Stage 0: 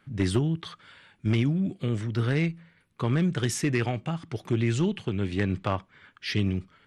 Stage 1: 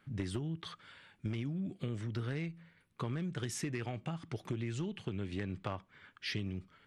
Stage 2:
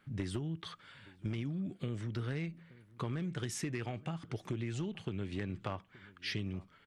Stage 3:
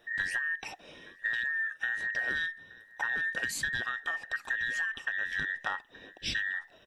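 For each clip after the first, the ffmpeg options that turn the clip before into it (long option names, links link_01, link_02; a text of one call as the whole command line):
ffmpeg -i in.wav -af "acompressor=threshold=-30dB:ratio=6,volume=-4.5dB" out.wav
ffmpeg -i in.wav -filter_complex "[0:a]asplit=2[link_01][link_02];[link_02]adelay=874.6,volume=-21dB,highshelf=frequency=4000:gain=-19.7[link_03];[link_01][link_03]amix=inputs=2:normalize=0" out.wav
ffmpeg -i in.wav -af "afftfilt=real='real(if(between(b,1,1012),(2*floor((b-1)/92)+1)*92-b,b),0)':imag='imag(if(between(b,1,1012),(2*floor((b-1)/92)+1)*92-b,b),0)*if(between(b,1,1012),-1,1)':win_size=2048:overlap=0.75,volume=5dB" out.wav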